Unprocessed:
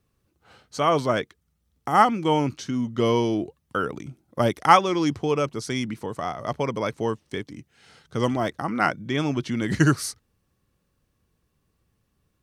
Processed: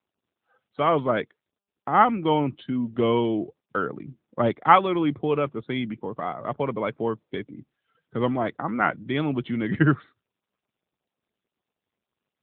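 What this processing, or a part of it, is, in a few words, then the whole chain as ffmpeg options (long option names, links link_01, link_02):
mobile call with aggressive noise cancelling: -af "highpass=110,afftdn=noise_reduction=27:noise_floor=-44" -ar 8000 -c:a libopencore_amrnb -b:a 10200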